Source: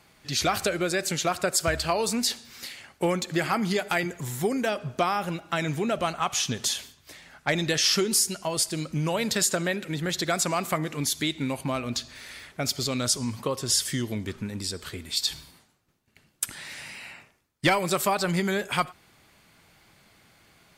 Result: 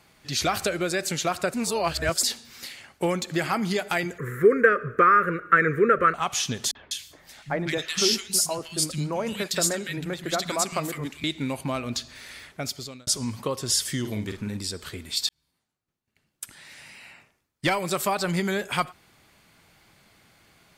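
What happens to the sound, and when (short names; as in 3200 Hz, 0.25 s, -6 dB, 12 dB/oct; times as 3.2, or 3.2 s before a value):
1.54–2.23 reverse
4.18–6.14 EQ curve 290 Hz 0 dB, 470 Hz +15 dB, 800 Hz -25 dB, 1200 Hz +14 dB, 1800 Hz +14 dB, 3200 Hz -17 dB, 4900 Hz -21 dB, 7900 Hz -15 dB, 15000 Hz -8 dB
6.71–11.24 three bands offset in time lows, mids, highs 40/200 ms, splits 180/1800 Hz
12.46–13.07 fade out
14–14.57 doubler 48 ms -6 dB
15.29–18.36 fade in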